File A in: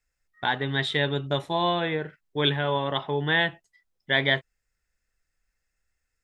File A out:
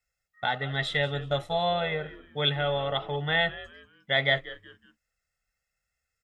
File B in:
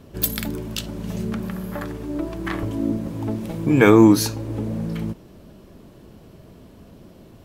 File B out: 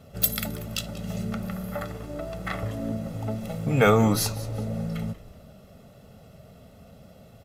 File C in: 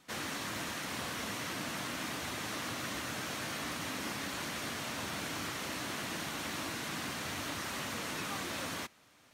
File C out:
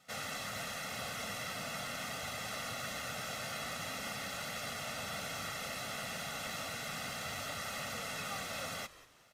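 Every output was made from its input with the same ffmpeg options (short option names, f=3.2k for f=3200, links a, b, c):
-filter_complex "[0:a]highpass=f=98:p=1,aecho=1:1:1.5:0.87,asplit=4[a][b][c][d];[b]adelay=187,afreqshift=-120,volume=-17dB[e];[c]adelay=374,afreqshift=-240,volume=-26.9dB[f];[d]adelay=561,afreqshift=-360,volume=-36.8dB[g];[a][e][f][g]amix=inputs=4:normalize=0,volume=-4dB"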